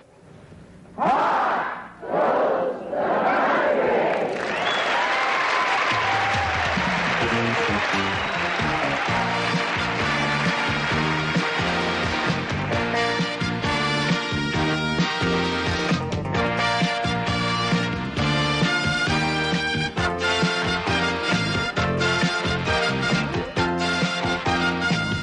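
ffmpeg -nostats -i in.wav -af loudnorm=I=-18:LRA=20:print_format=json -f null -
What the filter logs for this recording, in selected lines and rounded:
"input_i" : "-22.1",
"input_tp" : "-9.0",
"input_lra" : "1.6",
"input_thresh" : "-32.2",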